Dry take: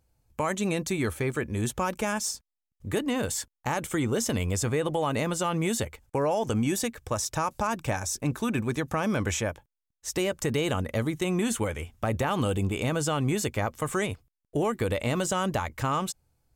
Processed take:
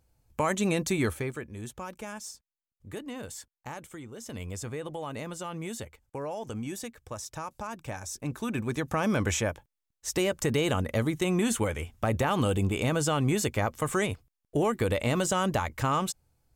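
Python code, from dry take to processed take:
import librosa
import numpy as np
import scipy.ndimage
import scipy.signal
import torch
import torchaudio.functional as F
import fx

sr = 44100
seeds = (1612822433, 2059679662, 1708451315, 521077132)

y = fx.gain(x, sr, db=fx.line((1.05, 1.0), (1.5, -11.0), (3.71, -11.0), (4.12, -18.0), (4.41, -9.5), (7.79, -9.5), (9.06, 0.5)))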